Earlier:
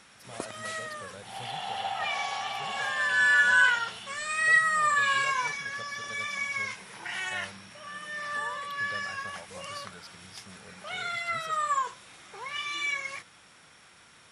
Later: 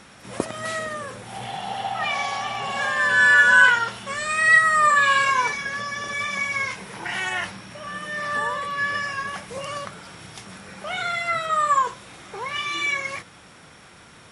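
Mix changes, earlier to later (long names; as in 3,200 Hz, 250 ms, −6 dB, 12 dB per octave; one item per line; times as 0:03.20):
first sound +9.5 dB
second sound +4.5 dB
master: add tilt shelving filter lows +4.5 dB, about 860 Hz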